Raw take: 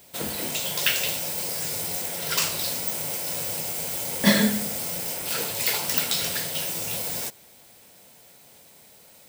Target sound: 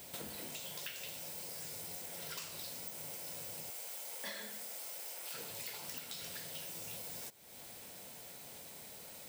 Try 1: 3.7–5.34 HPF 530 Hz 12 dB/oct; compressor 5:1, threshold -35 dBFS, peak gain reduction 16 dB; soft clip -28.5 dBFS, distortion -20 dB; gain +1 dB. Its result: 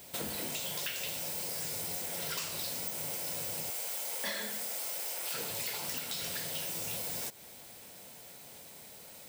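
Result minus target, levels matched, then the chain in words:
compressor: peak gain reduction -9 dB
3.7–5.34 HPF 530 Hz 12 dB/oct; compressor 5:1, threshold -46 dBFS, peak gain reduction 25 dB; soft clip -28.5 dBFS, distortion -32 dB; gain +1 dB

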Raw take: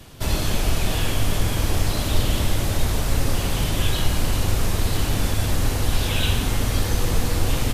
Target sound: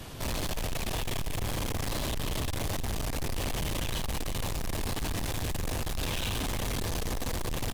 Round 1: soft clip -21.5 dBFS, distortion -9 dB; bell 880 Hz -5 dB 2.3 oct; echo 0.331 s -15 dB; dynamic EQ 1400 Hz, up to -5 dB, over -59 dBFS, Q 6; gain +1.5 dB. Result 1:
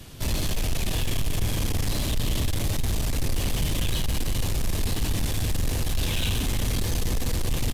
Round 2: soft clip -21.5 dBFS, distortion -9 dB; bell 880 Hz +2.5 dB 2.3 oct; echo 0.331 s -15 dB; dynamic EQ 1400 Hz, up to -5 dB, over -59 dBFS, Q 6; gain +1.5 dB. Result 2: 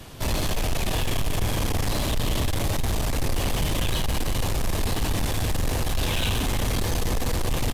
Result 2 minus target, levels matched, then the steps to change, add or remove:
soft clip: distortion -4 dB
change: soft clip -31.5 dBFS, distortion -5 dB

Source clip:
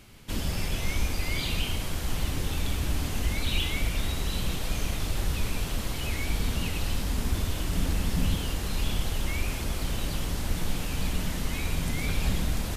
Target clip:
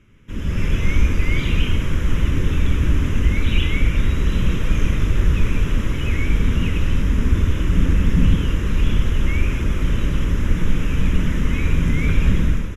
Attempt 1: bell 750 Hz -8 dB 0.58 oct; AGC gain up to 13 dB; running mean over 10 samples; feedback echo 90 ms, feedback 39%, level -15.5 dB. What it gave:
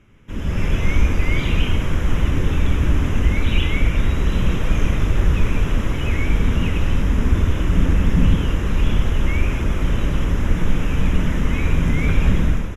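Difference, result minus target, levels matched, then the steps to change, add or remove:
1000 Hz band +3.5 dB
change: bell 750 Hz -19 dB 0.58 oct

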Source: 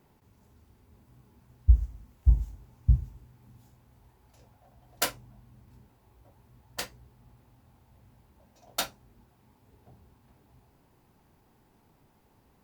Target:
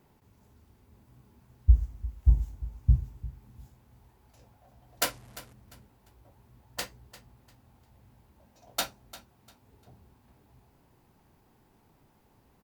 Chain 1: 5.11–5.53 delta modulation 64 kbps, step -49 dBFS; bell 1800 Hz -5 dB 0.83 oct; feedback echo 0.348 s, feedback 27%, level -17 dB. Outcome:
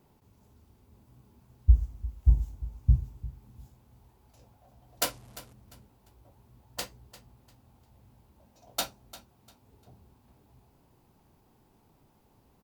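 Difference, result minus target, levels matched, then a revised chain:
2000 Hz band -3.5 dB
5.11–5.53 delta modulation 64 kbps, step -49 dBFS; feedback echo 0.348 s, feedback 27%, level -17 dB

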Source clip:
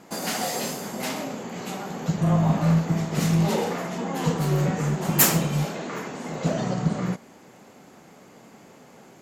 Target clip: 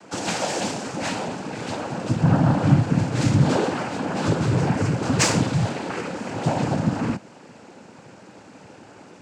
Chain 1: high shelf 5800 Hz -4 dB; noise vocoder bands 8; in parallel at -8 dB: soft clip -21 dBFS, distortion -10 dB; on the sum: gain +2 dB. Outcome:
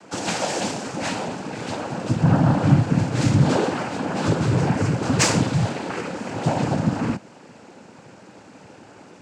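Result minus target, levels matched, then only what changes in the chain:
soft clip: distortion -5 dB
change: soft clip -28.5 dBFS, distortion -5 dB

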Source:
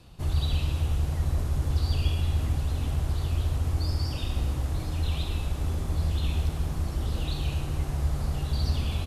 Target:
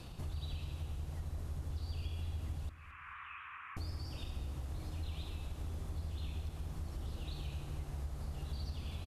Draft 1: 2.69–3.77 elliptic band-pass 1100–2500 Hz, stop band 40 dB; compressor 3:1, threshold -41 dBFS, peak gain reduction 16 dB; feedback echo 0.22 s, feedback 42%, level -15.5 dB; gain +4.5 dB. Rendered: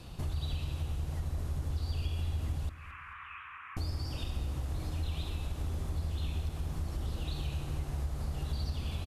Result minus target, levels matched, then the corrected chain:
compressor: peak gain reduction -6.5 dB
2.69–3.77 elliptic band-pass 1100–2500 Hz, stop band 40 dB; compressor 3:1, threshold -50.5 dBFS, peak gain reduction 22.5 dB; feedback echo 0.22 s, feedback 42%, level -15.5 dB; gain +4.5 dB

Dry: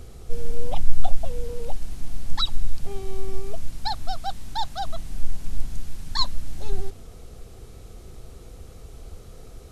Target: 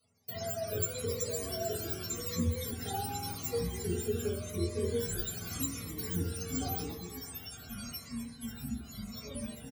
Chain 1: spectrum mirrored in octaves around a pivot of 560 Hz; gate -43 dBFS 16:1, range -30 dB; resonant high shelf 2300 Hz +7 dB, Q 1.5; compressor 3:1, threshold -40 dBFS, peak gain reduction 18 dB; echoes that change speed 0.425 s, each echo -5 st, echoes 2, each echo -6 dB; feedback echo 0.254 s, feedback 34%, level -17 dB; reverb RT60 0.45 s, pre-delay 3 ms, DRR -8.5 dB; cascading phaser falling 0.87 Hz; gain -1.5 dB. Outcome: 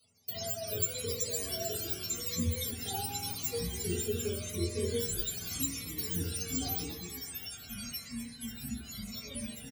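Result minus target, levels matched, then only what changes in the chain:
4000 Hz band +3.0 dB
remove: resonant high shelf 2300 Hz +7 dB, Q 1.5

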